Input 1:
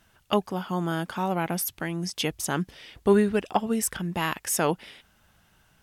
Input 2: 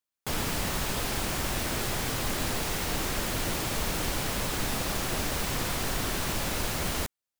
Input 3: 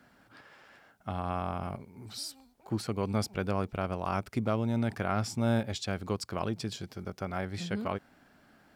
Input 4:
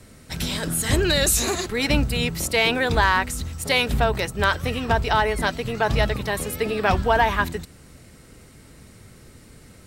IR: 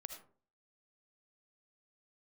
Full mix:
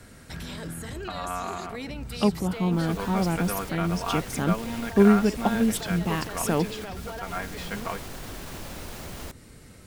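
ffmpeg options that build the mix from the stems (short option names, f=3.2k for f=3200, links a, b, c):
-filter_complex "[0:a]equalizer=f=200:w=0.7:g=10.5,adelay=1900,volume=-5dB[a];[1:a]adelay=2250,volume=-5.5dB[b];[2:a]equalizer=f=1.7k:t=o:w=2.8:g=12,aecho=1:1:4.3:0.65,volume=-7.5dB,asplit=2[c][d];[3:a]volume=-1.5dB[e];[d]apad=whole_len=434940[f];[e][f]sidechaincompress=threshold=-43dB:ratio=8:attack=11:release=136[g];[b][g]amix=inputs=2:normalize=0,acrossover=split=710|2000[h][i][j];[h]acompressor=threshold=-32dB:ratio=4[k];[i]acompressor=threshold=-47dB:ratio=4[l];[j]acompressor=threshold=-42dB:ratio=4[m];[k][l][m]amix=inputs=3:normalize=0,alimiter=level_in=4dB:limit=-24dB:level=0:latency=1:release=22,volume=-4dB,volume=0dB[n];[a][c][n]amix=inputs=3:normalize=0"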